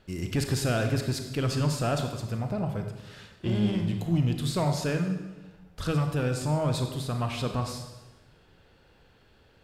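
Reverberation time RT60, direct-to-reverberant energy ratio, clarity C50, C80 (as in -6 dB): 1.1 s, 5.0 dB, 6.5 dB, 8.5 dB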